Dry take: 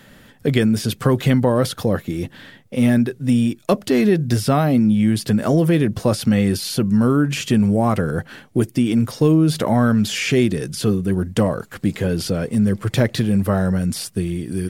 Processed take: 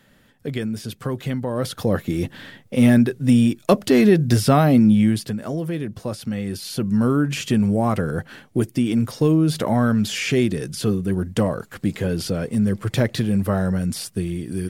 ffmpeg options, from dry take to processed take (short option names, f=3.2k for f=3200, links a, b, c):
-af "volume=9dB,afade=t=in:st=1.48:d=0.66:silence=0.281838,afade=t=out:st=4.95:d=0.4:silence=0.266073,afade=t=in:st=6.45:d=0.57:silence=0.421697"